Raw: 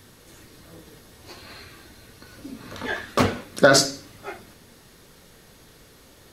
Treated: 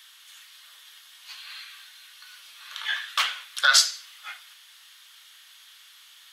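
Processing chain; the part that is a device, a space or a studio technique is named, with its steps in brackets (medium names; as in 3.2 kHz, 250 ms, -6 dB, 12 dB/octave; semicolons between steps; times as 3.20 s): headphones lying on a table (high-pass 1.2 kHz 24 dB/octave; peaking EQ 3.2 kHz +11 dB 0.5 oct)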